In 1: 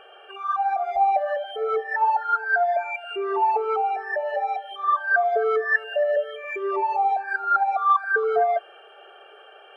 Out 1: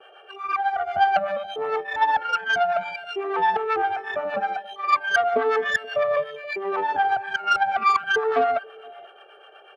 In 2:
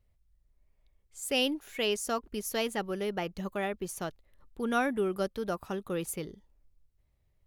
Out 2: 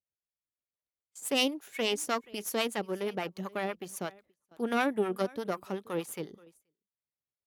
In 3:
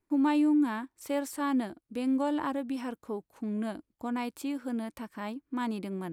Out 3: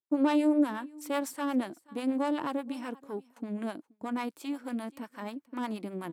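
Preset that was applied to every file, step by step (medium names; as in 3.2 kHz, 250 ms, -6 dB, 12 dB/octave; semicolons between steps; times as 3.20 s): delay 478 ms -21.5 dB; Chebyshev shaper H 3 -20 dB, 4 -18 dB, 8 -32 dB, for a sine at -9.5 dBFS; harmonic tremolo 8.2 Hz, depth 70%, crossover 650 Hz; gate with hold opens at -51 dBFS; high-pass 180 Hz 12 dB/octave; trim +5.5 dB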